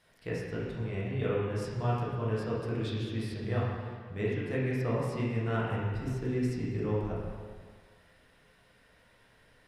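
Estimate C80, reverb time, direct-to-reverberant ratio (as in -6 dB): 1.5 dB, 1.7 s, -7.0 dB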